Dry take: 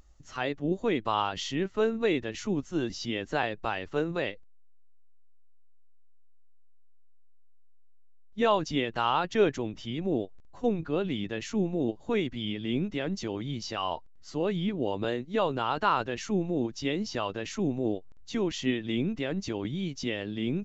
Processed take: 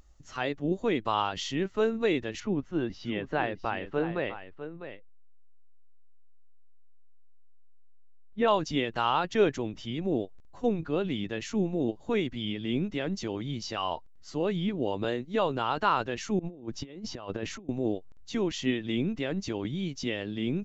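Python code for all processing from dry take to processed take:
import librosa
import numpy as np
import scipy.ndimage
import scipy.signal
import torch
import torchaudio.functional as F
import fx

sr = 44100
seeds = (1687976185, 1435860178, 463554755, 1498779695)

y = fx.chain(x, sr, fx.lowpass(hz=2600.0, slope=12),
    fx.echo_single(ms=652, db=-11.0), at=(2.4, 8.48))
y = fx.chain(y, sr, fx.over_compress(threshold_db=-36.0, ratio=-0.5),
    fx.high_shelf(hz=2100.0, db=-8.0), at=(16.39, 17.69))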